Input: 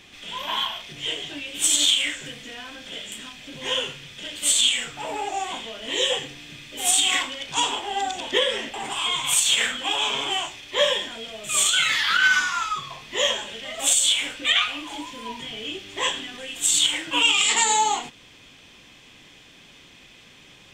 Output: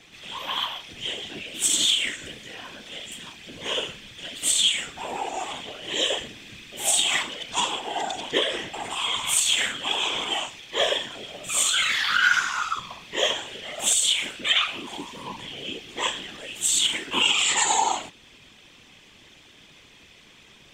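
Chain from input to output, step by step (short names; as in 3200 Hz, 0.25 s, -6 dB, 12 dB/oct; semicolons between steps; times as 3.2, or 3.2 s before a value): whisperiser; gain -2 dB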